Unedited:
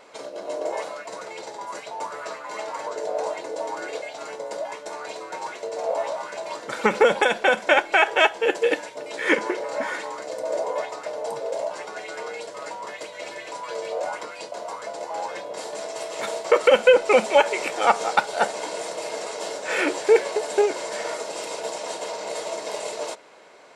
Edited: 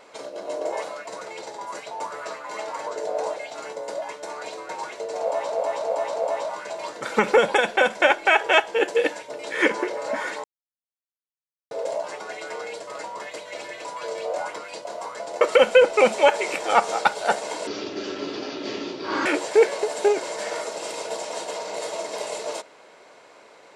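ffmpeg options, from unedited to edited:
ffmpeg -i in.wav -filter_complex "[0:a]asplit=10[link_01][link_02][link_03][link_04][link_05][link_06][link_07][link_08][link_09][link_10];[link_01]atrim=end=3.362[link_11];[link_02]atrim=start=3.988:end=6.152[link_12];[link_03]atrim=start=5.828:end=6.152[link_13];[link_04]atrim=start=5.828:end=6.152[link_14];[link_05]atrim=start=5.828:end=10.11,asetpts=PTS-STARTPTS,afade=type=out:start_time=4.278:duration=0.004:curve=hsin[link_15];[link_06]atrim=start=10.11:end=11.38,asetpts=PTS-STARTPTS,volume=0[link_16];[link_07]atrim=start=11.38:end=15.082,asetpts=PTS-STARTPTS,afade=type=in:duration=0.004:curve=hsin[link_17];[link_08]atrim=start=16.528:end=18.794[link_18];[link_09]atrim=start=18.79:end=19.79,asetpts=PTS-STARTPTS,asetrate=27783,aresample=44100[link_19];[link_10]atrim=start=19.786[link_20];[link_11][link_12]acrossfade=duration=0.004:curve1=hsin:curve2=hsin[link_21];[link_21][link_13]acrossfade=duration=0.004:curve1=hsin:curve2=hsin[link_22];[link_22][link_14]acrossfade=duration=0.004:curve1=hsin:curve2=hsin[link_23];[link_15][link_16][link_17]concat=n=3:v=0:a=1[link_24];[link_23][link_24]acrossfade=duration=0.004:curve1=hsin:curve2=hsin[link_25];[link_25][link_18]acrossfade=duration=0.004:curve1=hsin:curve2=hsin[link_26];[link_26][link_19]acrossfade=duration=0.004:curve1=hsin:curve2=hsin[link_27];[link_27][link_20]acrossfade=duration=0.004:curve1=hsin:curve2=hsin" out.wav

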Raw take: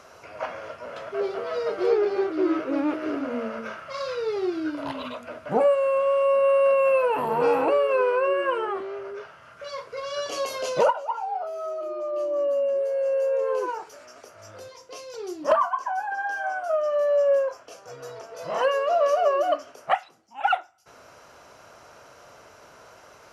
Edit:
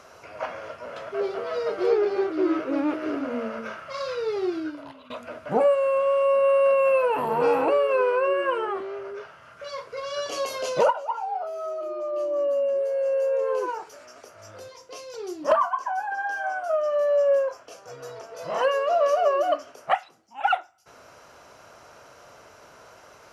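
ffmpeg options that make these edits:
ffmpeg -i in.wav -filter_complex "[0:a]asplit=2[link_01][link_02];[link_01]atrim=end=5.1,asetpts=PTS-STARTPTS,afade=type=out:start_time=4.56:duration=0.54:curve=qua:silence=0.149624[link_03];[link_02]atrim=start=5.1,asetpts=PTS-STARTPTS,afade=type=in:duration=0.004:curve=hsin:silence=0.149624[link_04];[link_03][link_04]concat=n=2:v=0:a=1" out.wav

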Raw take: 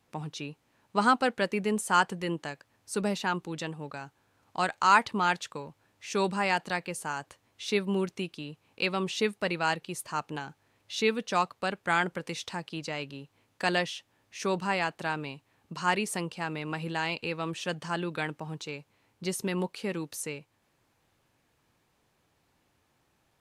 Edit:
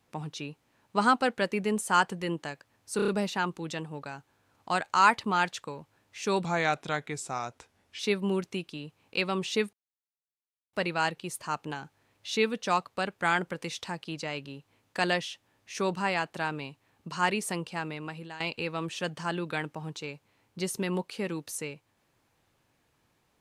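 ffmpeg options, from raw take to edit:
ffmpeg -i in.wav -filter_complex "[0:a]asplit=9[link_01][link_02][link_03][link_04][link_05][link_06][link_07][link_08][link_09];[link_01]atrim=end=2.992[link_10];[link_02]atrim=start=2.958:end=2.992[link_11];[link_03]atrim=start=2.958:end=2.992[link_12];[link_04]atrim=start=2.958:end=2.992[link_13];[link_05]atrim=start=2.958:end=6.334[link_14];[link_06]atrim=start=6.33:end=7.64,asetpts=PTS-STARTPTS,asetrate=37485,aresample=44100[link_15];[link_07]atrim=start=7.636:end=9.38,asetpts=PTS-STARTPTS,afade=type=out:start_time=1.74:duration=0.004:curve=hsin,apad=pad_dur=1[link_16];[link_08]atrim=start=9.38:end=17.05,asetpts=PTS-STARTPTS,afade=type=in:duration=0.004:curve=hsin,afade=type=out:start_time=7.04:duration=0.63:silence=0.188365[link_17];[link_09]atrim=start=17.05,asetpts=PTS-STARTPTS,afade=type=in:duration=0.004:curve=hsin:silence=0.188365[link_18];[link_10][link_11]acrossfade=duration=0.004:curve1=hsin:curve2=hsin[link_19];[link_19][link_12]acrossfade=duration=0.004:curve1=hsin:curve2=hsin[link_20];[link_20][link_13]acrossfade=duration=0.004:curve1=hsin:curve2=hsin[link_21];[link_21][link_14]acrossfade=duration=0.004:curve1=hsin:curve2=hsin[link_22];[link_22][link_15]acrossfade=duration=0.004:curve1=hsin:curve2=hsin[link_23];[link_16][link_17][link_18]concat=n=3:v=0:a=1[link_24];[link_23][link_24]acrossfade=duration=0.004:curve1=hsin:curve2=hsin" out.wav

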